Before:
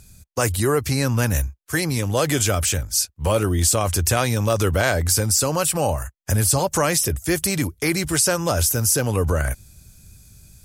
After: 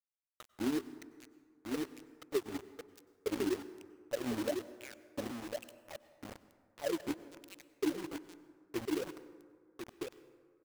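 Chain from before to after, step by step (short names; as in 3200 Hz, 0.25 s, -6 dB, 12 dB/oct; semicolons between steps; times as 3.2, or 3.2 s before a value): wah 1.1 Hz 260–2800 Hz, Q 18; EQ curve 170 Hz 0 dB, 360 Hz +1 dB, 1100 Hz -22 dB, 5300 Hz -4 dB; crossover distortion -49.5 dBFS; low shelf 190 Hz -4 dB; outdoor echo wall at 180 m, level -8 dB; companded quantiser 4-bit; compressor 6:1, threshold -38 dBFS, peak gain reduction 10.5 dB; plate-style reverb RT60 1.9 s, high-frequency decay 0.45×, pre-delay 85 ms, DRR 15 dB; gain +8.5 dB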